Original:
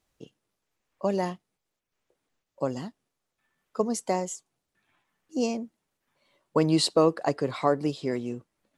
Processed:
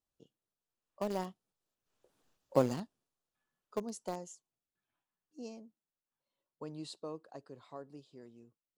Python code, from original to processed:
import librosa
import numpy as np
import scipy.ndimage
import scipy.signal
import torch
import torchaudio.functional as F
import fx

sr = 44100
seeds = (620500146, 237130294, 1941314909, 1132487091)

p1 = fx.doppler_pass(x, sr, speed_mps=10, closest_m=2.1, pass_at_s=2.27)
p2 = fx.peak_eq(p1, sr, hz=2100.0, db=-8.0, octaves=0.41)
p3 = fx.quant_dither(p2, sr, seeds[0], bits=6, dither='none')
p4 = p2 + (p3 * 10.0 ** (-12.0 / 20.0))
y = p4 * 10.0 ** (4.5 / 20.0)